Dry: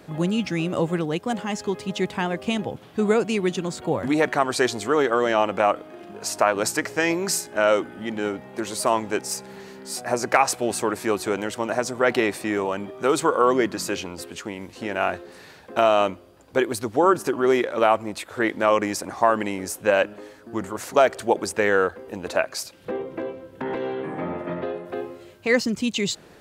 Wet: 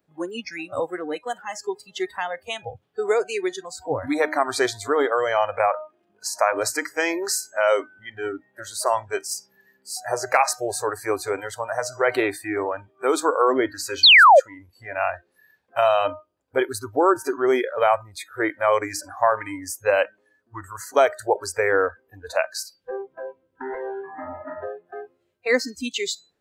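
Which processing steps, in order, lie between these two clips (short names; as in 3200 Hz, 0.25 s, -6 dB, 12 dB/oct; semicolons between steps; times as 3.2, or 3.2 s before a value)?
de-hum 308.1 Hz, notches 25; painted sound fall, 14.03–14.4, 500–4700 Hz -10 dBFS; spectral noise reduction 26 dB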